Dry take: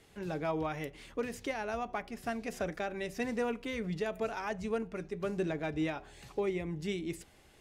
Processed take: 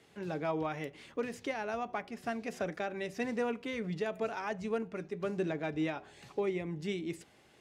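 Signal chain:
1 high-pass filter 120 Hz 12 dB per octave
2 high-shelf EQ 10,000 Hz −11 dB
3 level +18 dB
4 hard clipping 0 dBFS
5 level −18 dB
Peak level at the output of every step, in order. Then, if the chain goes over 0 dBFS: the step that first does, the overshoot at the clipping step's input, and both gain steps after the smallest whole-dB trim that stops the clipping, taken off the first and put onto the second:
−22.5, −22.5, −4.5, −4.5, −22.5 dBFS
no step passes full scale

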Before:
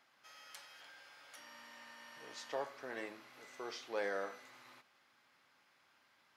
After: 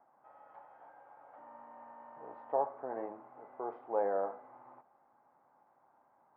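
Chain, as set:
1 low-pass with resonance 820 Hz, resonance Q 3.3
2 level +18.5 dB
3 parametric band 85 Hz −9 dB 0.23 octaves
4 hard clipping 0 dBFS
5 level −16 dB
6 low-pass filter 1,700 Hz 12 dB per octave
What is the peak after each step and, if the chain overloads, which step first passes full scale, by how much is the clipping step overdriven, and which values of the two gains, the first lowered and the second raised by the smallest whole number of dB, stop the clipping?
−21.5, −3.0, −3.0, −3.0, −19.0, −19.0 dBFS
no step passes full scale

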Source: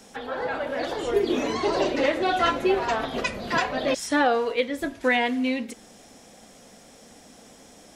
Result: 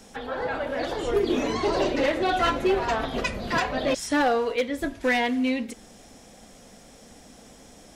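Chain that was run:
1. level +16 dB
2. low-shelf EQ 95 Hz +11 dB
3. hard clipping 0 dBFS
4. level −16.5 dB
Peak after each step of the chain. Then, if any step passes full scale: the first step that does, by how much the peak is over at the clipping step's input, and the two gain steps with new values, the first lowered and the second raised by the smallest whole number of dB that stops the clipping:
+6.0, +6.5, 0.0, −16.5 dBFS
step 1, 6.5 dB
step 1 +9 dB, step 4 −9.5 dB

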